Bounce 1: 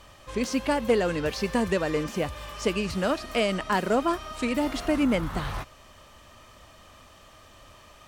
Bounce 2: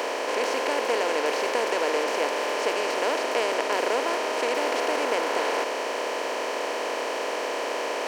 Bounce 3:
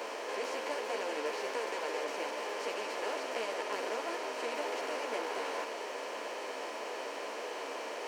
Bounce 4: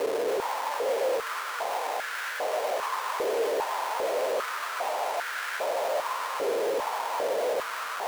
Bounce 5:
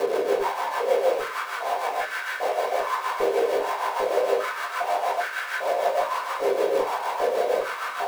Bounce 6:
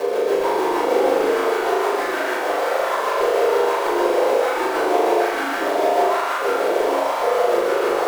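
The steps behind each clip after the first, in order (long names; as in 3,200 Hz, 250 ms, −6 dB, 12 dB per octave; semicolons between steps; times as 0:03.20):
compressor on every frequency bin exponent 0.2; high-pass filter 390 Hz 24 dB per octave; parametric band 1,200 Hz −2.5 dB 0.34 octaves; level −6.5 dB
string-ensemble chorus; level −8 dB
echo that builds up and dies away 136 ms, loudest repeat 5, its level −12 dB; comparator with hysteresis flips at −38 dBFS; high-pass on a step sequencer 2.5 Hz 440–1,500 Hz; level +2 dB
amplitude tremolo 6.5 Hz, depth 57%; convolution reverb RT60 0.25 s, pre-delay 3 ms, DRR −3 dB
delay with pitch and tempo change per echo 268 ms, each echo −2 semitones, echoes 3; on a send: flutter between parallel walls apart 6.8 metres, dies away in 0.84 s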